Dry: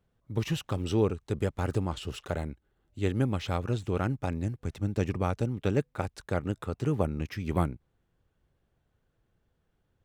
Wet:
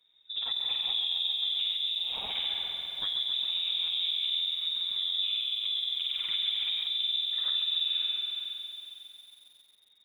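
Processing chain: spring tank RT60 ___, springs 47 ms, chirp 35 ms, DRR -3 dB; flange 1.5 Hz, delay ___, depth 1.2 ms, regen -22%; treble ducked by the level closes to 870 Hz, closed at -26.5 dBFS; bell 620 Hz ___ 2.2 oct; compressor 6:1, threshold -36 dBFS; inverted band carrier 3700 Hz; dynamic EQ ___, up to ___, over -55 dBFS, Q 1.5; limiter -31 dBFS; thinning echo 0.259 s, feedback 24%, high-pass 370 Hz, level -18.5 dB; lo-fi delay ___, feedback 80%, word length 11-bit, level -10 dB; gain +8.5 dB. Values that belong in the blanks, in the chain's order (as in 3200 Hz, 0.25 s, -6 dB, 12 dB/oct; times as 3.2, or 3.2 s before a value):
2 s, 4 ms, -12.5 dB, 1800 Hz, -4 dB, 0.136 s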